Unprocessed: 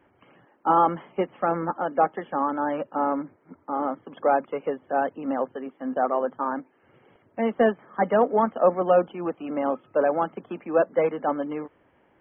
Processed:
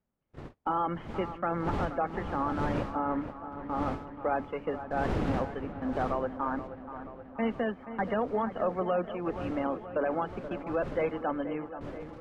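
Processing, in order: wind noise 530 Hz -36 dBFS; bell 590 Hz -6.5 dB 2.4 oct; gate -41 dBFS, range -34 dB; limiter -20.5 dBFS, peak gain reduction 7.5 dB; on a send: dark delay 0.478 s, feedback 65%, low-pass 2500 Hz, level -12 dB

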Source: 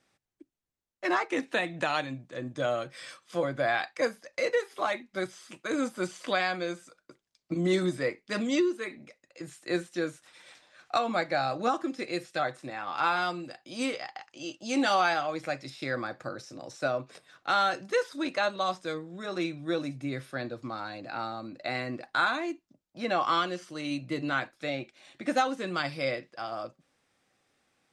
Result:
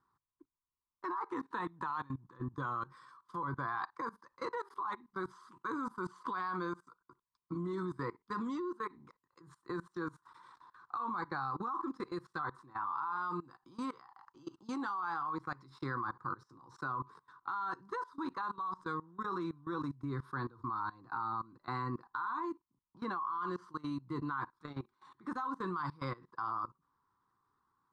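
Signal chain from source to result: EQ curve 110 Hz 0 dB, 250 Hz -7 dB, 410 Hz -5 dB, 630 Hz -28 dB, 1000 Hz +14 dB, 2500 Hz -26 dB, 4100 Hz -14 dB, 6300 Hz -21 dB, 10000 Hz -19 dB; limiter -21.5 dBFS, peak gain reduction 11.5 dB; level quantiser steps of 21 dB; gain +5 dB

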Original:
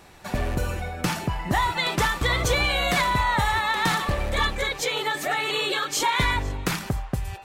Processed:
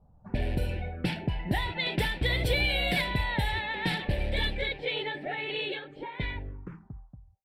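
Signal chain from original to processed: ending faded out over 2.26 s; envelope phaser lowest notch 320 Hz, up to 1200 Hz, full sweep at -26.5 dBFS; low-pass opened by the level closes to 300 Hz, open at -20.5 dBFS; gain -2.5 dB

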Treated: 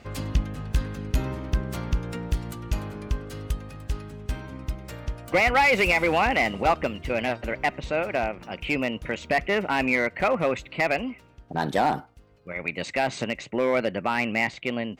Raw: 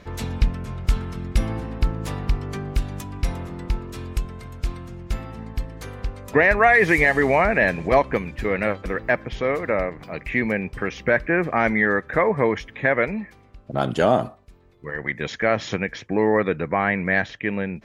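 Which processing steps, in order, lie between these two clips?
wide varispeed 1.19×; one-sided clip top -12.5 dBFS; gain -3 dB

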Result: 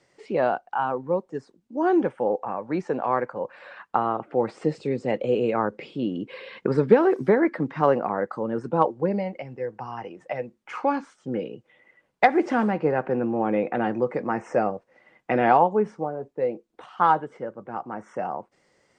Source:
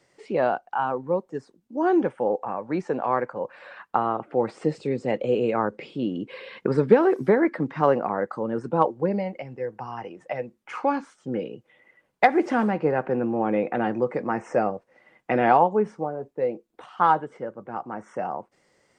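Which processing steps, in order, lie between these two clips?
LPF 8900 Hz 12 dB/oct

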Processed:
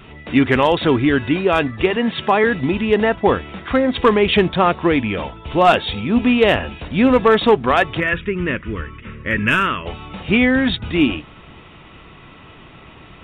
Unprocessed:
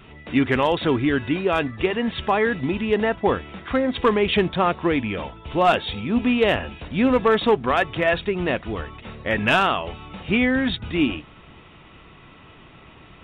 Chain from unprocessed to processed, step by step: 1.96–2.44 HPF 110 Hz 24 dB/oct; 8–9.86 fixed phaser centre 1800 Hz, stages 4; gain +5 dB

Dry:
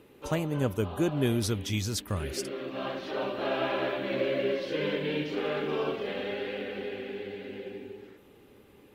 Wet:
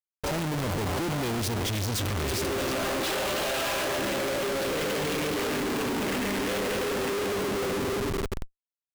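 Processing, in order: 3.04–3.85 RIAA curve recording; gate -46 dBFS, range -19 dB; 5.5–6.49 graphic EQ 125/250/500/1000/2000/4000/8000 Hz -7/+8/-11/-9/+4/-8/-11 dB; hard clip -30 dBFS, distortion -8 dB; split-band echo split 400 Hz, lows 0.216 s, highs 0.323 s, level -9 dB; Schmitt trigger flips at -47 dBFS; gain +6 dB

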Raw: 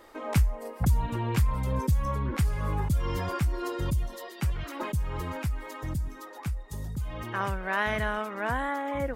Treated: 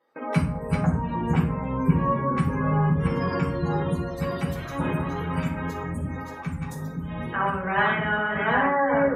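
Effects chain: reverse delay 0.545 s, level -3 dB; gate with hold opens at -32 dBFS; HPF 180 Hz 12 dB/oct; spectral gate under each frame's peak -25 dB strong; 0.8–3.22 high shelf 5500 Hz -9.5 dB; reverb RT60 0.60 s, pre-delay 3 ms, DRR -4 dB

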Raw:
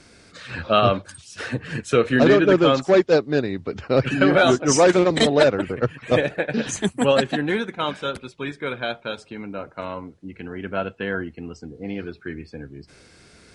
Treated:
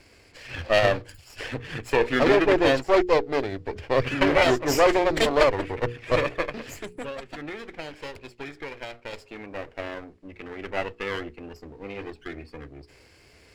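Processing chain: minimum comb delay 0.4 ms; bell 190 Hz -11.5 dB 0.96 oct; notches 60/120/180/240/300/360/420/480 Hz; 6.49–9.13 compressor 10:1, threshold -32 dBFS, peak gain reduction 16.5 dB; high shelf 5500 Hz -9 dB

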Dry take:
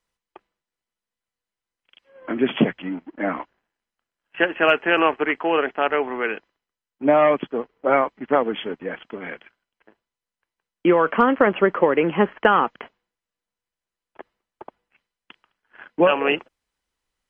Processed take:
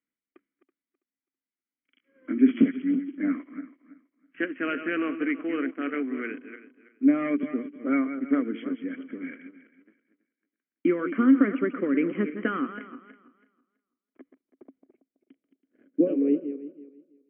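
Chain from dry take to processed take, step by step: regenerating reverse delay 0.164 s, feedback 45%, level -10 dB; low-pass sweep 1300 Hz -> 420 Hz, 13.57–16.58; vowel filter i; gain +6.5 dB

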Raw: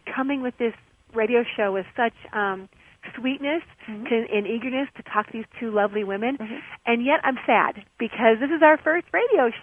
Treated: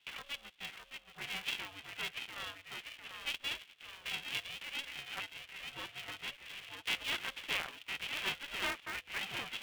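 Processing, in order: band-pass 3100 Hz, Q 8; echoes that change speed 0.601 s, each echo -1 st, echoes 2, each echo -6 dB; polarity switched at an audio rate 290 Hz; gain +1.5 dB

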